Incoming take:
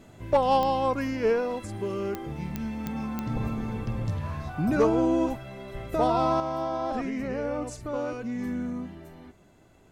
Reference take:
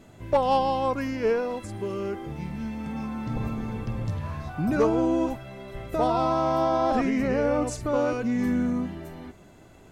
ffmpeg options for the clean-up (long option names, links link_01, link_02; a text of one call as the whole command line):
ffmpeg -i in.wav -af "adeclick=threshold=4,asetnsamples=nb_out_samples=441:pad=0,asendcmd='6.4 volume volume 6.5dB',volume=0dB" out.wav